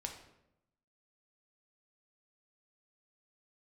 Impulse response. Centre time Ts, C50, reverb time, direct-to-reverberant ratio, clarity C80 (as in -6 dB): 23 ms, 7.0 dB, 0.85 s, 2.0 dB, 10.0 dB